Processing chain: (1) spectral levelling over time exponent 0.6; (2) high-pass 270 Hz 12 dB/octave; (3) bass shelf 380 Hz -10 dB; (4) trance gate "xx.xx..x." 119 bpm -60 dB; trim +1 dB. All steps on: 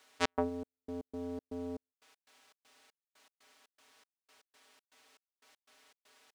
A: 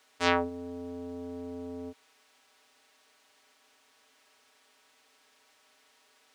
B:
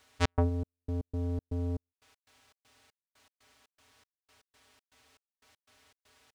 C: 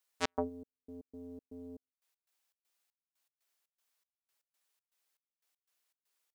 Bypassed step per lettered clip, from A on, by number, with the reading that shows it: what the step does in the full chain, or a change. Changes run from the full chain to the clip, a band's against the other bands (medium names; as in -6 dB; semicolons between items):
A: 4, crest factor change -3.0 dB; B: 2, 125 Hz band +19.5 dB; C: 1, 8 kHz band +2.5 dB